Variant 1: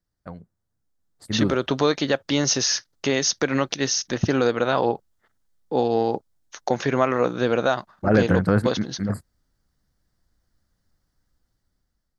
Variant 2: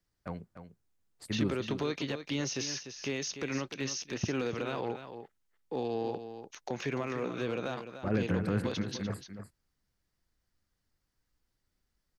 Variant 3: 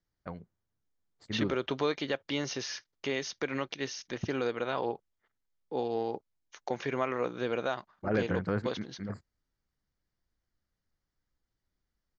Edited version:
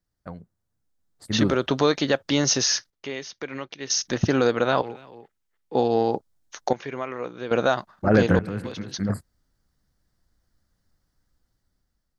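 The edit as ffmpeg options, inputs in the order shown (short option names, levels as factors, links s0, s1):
-filter_complex "[2:a]asplit=2[s0][s1];[1:a]asplit=2[s2][s3];[0:a]asplit=5[s4][s5][s6][s7][s8];[s4]atrim=end=2.902[s9];[s0]atrim=start=2.898:end=3.902[s10];[s5]atrim=start=3.898:end=4.822[s11];[s2]atrim=start=4.818:end=5.752[s12];[s6]atrim=start=5.748:end=6.732[s13];[s1]atrim=start=6.728:end=7.512[s14];[s7]atrim=start=7.508:end=8.392[s15];[s3]atrim=start=8.388:end=8.942[s16];[s8]atrim=start=8.938[s17];[s9][s10]acrossfade=d=0.004:c1=hsin:c2=hsin[s18];[s18][s11]acrossfade=d=0.004:c1=hsin:c2=hsin[s19];[s19][s12]acrossfade=d=0.004:c1=hsin:c2=hsin[s20];[s20][s13]acrossfade=d=0.004:c1=hsin:c2=hsin[s21];[s21][s14]acrossfade=d=0.004:c1=hsin:c2=hsin[s22];[s22][s15]acrossfade=d=0.004:c1=hsin:c2=hsin[s23];[s23][s16]acrossfade=d=0.004:c1=hsin:c2=hsin[s24];[s24][s17]acrossfade=d=0.004:c1=hsin:c2=hsin"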